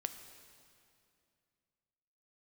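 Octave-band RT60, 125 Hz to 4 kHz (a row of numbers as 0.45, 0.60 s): 3.0, 2.9, 2.6, 2.4, 2.3, 2.2 s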